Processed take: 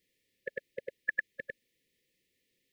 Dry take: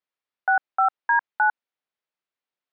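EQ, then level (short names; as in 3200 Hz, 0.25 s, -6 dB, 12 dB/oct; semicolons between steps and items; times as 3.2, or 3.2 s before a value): brick-wall FIR band-stop 560–1700 Hz; low shelf 450 Hz +7.5 dB; +14.0 dB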